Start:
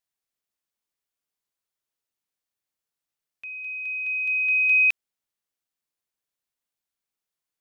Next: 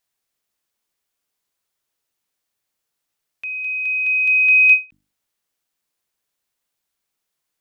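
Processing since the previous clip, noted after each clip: hum notches 50/100/150/200/250/300 Hz; endings held to a fixed fall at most 270 dB/s; trim +9 dB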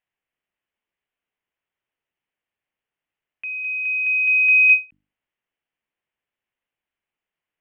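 FFT filter 930 Hz 0 dB, 1.3 kHz -2 dB, 1.9 kHz +3 dB, 3 kHz +1 dB, 4.3 kHz -22 dB; trim -3.5 dB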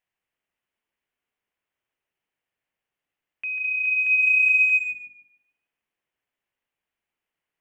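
peak limiter -15.5 dBFS, peak gain reduction 8 dB; tape echo 146 ms, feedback 37%, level -5 dB, low-pass 2.6 kHz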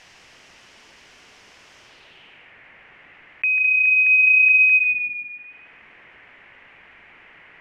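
low-pass sweep 5.5 kHz -> 2.1 kHz, 1.82–2.54 s; level flattener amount 50%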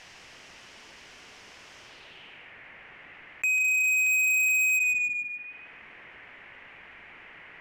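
saturation -22.5 dBFS, distortion -8 dB

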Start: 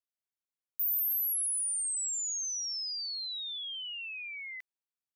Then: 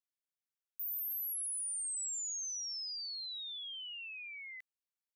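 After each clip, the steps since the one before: high-pass 1.3 kHz; peak limiter -30.5 dBFS, peak gain reduction 4 dB; trim -5 dB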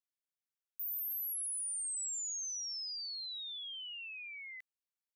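no audible change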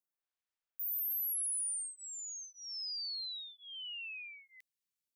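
lamp-driven phase shifter 0.57 Hz; trim +3 dB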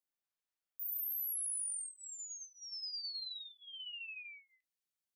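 flange 0.47 Hz, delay 5.5 ms, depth 1.8 ms, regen -49%; endings held to a fixed fall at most 230 dB/s; trim +1.5 dB

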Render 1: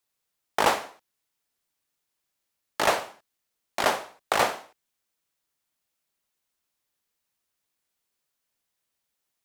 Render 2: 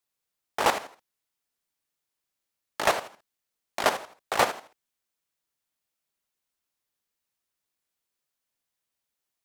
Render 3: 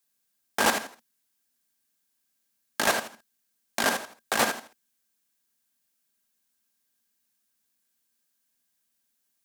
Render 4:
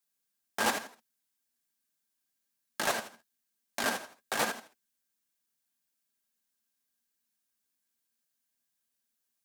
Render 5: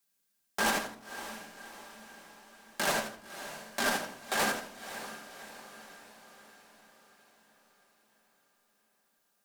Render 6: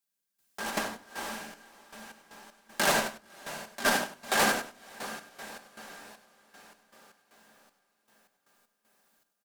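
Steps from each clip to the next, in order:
level held to a coarse grid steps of 11 dB; trim +3 dB
treble shelf 4 kHz +10.5 dB; peak limiter -11 dBFS, peak gain reduction 7 dB; small resonant body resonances 230/1600 Hz, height 13 dB, ringing for 55 ms
flange 1.1 Hz, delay 3.9 ms, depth 8.7 ms, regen -27%; trim -2.5 dB
saturation -28.5 dBFS, distortion -10 dB; echo that smears into a reverb 572 ms, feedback 55%, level -12 dB; reverberation RT60 0.55 s, pre-delay 5 ms, DRR 5.5 dB; trim +4 dB
trance gate "..x.x.xx" 78 bpm -12 dB; delay 98 ms -13.5 dB; trim +4.5 dB

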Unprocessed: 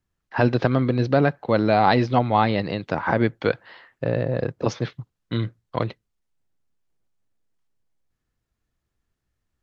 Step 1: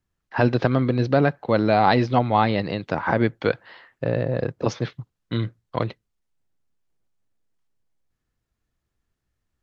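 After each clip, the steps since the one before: no audible change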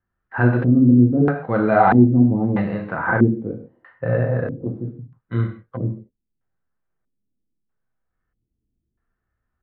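harmonic-percussive split harmonic +8 dB; gated-style reverb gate 190 ms falling, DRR 0.5 dB; LFO low-pass square 0.78 Hz 290–1500 Hz; trim -8 dB

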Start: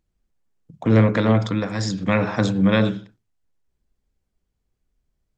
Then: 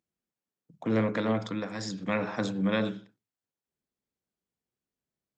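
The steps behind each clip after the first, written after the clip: high-pass 170 Hz 12 dB/octave; trim -8.5 dB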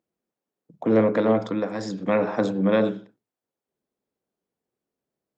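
peaking EQ 480 Hz +13 dB 2.9 oct; trim -2.5 dB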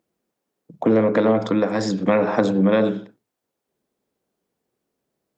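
compression 4:1, threshold -22 dBFS, peak gain reduction 8 dB; trim +8 dB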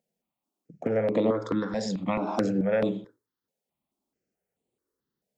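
stepped phaser 4.6 Hz 320–5400 Hz; trim -5 dB

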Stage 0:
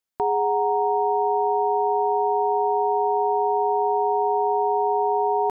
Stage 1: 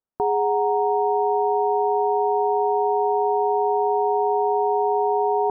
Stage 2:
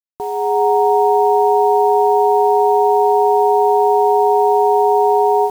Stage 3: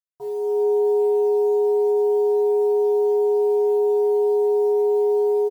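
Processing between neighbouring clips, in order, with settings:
Bessel low-pass 940 Hz, order 8; trim +2.5 dB
level rider gain up to 16 dB; bit crusher 6-bit; trim -3.5 dB
feedback comb 140 Hz, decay 0.37 s, harmonics odd, mix 100%; delay 454 ms -20.5 dB; trim +2 dB

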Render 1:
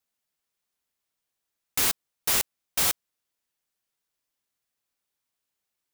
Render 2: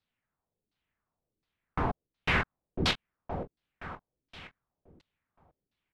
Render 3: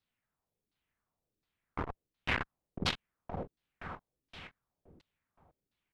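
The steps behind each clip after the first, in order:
tone controls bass +11 dB, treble -9 dB; feedback delay 520 ms, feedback 42%, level -6 dB; LFO low-pass saw down 1.4 Hz 300–4500 Hz
transformer saturation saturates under 530 Hz; trim -1.5 dB

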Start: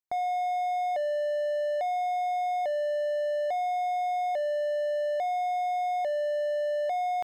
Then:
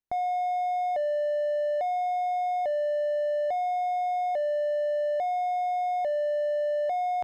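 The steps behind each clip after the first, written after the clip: tilt EQ -2 dB/octave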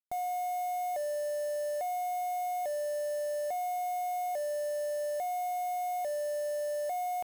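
peak limiter -32.5 dBFS, peak gain reduction 9.5 dB; bit crusher 8-bit; trim +2.5 dB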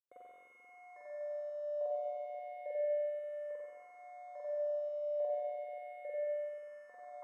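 two resonant band-passes 750 Hz, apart 1 oct; spring tank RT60 2.4 s, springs 44/48 ms, chirp 45 ms, DRR -8.5 dB; barber-pole phaser -0.33 Hz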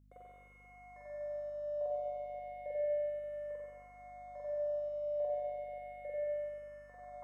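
hum 50 Hz, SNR 24 dB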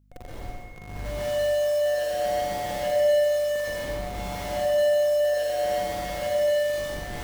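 in parallel at -3.5 dB: Schmitt trigger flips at -49 dBFS; on the sum: plate-style reverb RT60 1.4 s, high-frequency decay 0.95×, pre-delay 110 ms, DRR -7.5 dB; trim +4 dB

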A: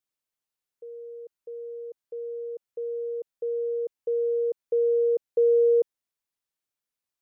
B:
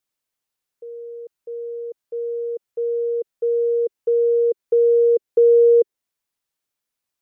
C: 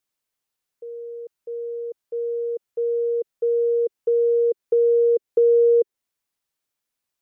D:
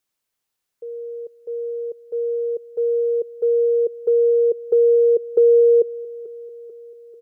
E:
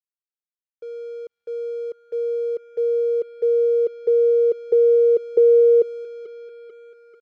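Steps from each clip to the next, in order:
in parallel at -1 dB: compression, threshold -31 dBFS, peak gain reduction 12 dB; on the sum: dynamic bell 400 Hz, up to +8 dB, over -35 dBFS, Q 2.2
compression 1.5:1, threshold -19 dBFS, peak gain reduction 3 dB
feedback delay 441 ms, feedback 59%, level -19 dB; trim +3 dB
crossover distortion -47.5 dBFS; distance through air 93 m

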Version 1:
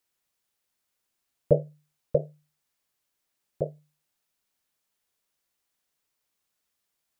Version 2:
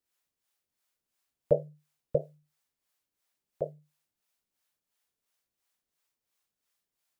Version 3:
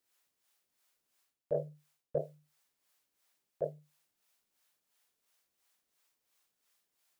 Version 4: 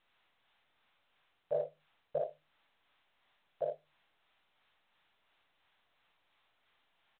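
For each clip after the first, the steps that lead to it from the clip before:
harmonic tremolo 2.9 Hz, depth 70%, crossover 480 Hz
bass shelf 170 Hz -8.5 dB; reverse; compression 12:1, threshold -35 dBFS, peak gain reduction 17.5 dB; reverse; trim +5 dB
resonant low shelf 500 Hz -12 dB, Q 1.5; early reflections 47 ms -10 dB, 57 ms -4 dB; trim +1.5 dB; µ-law 64 kbps 8 kHz

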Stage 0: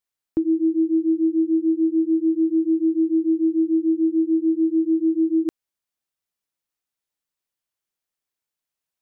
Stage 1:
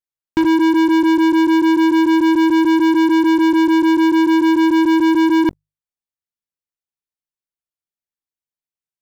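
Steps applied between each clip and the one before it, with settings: bass shelf 250 Hz +8.5 dB; hum notches 50/100/150 Hz; waveshaping leveller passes 5; trim -1.5 dB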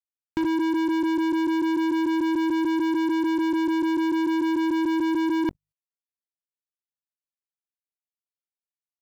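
level held to a coarse grid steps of 23 dB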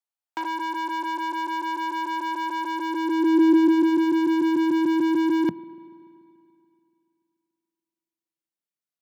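high-pass sweep 750 Hz -> 170 Hz, 2.60–4.07 s; spring tank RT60 2.7 s, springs 36/48 ms, chirp 60 ms, DRR 18.5 dB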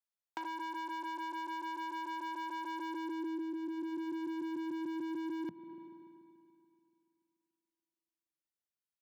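compression 10:1, threshold -31 dBFS, peak gain reduction 17 dB; trim -6.5 dB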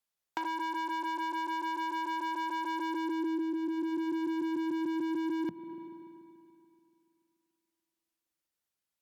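trim +6 dB; Opus 96 kbps 48 kHz

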